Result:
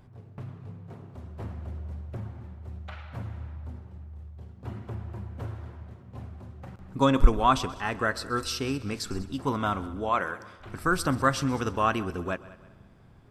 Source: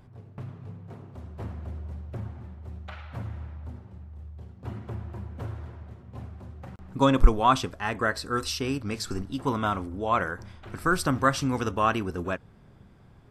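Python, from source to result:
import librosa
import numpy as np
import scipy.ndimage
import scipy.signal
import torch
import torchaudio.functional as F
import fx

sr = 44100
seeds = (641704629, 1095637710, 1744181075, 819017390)

y = fx.highpass(x, sr, hz=280.0, slope=6, at=(10.09, 10.6))
y = fx.echo_heads(y, sr, ms=65, heads='second and third', feedback_pct=43, wet_db=-20.0)
y = y * librosa.db_to_amplitude(-1.0)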